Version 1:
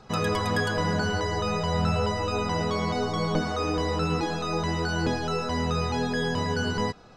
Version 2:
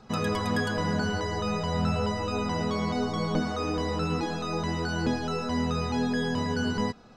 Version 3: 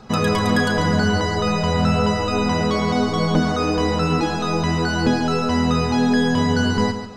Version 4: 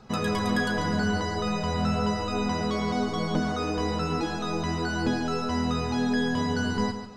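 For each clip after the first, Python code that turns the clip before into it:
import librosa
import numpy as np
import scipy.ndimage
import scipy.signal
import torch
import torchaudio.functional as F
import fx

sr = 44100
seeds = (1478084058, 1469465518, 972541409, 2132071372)

y1 = fx.peak_eq(x, sr, hz=230.0, db=9.5, octaves=0.3)
y1 = y1 * librosa.db_to_amplitude(-3.0)
y2 = fx.echo_feedback(y1, sr, ms=141, feedback_pct=31, wet_db=-10)
y2 = y2 * librosa.db_to_amplitude(9.0)
y3 = fx.doubler(y2, sr, ms=15.0, db=-10.5)
y3 = y3 * librosa.db_to_amplitude(-8.0)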